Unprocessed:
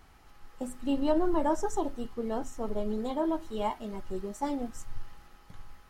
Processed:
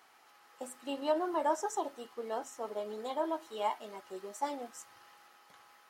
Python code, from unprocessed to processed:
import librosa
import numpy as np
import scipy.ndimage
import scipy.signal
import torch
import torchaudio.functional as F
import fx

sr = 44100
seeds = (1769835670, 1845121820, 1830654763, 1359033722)

y = scipy.signal.sosfilt(scipy.signal.butter(2, 540.0, 'highpass', fs=sr, output='sos'), x)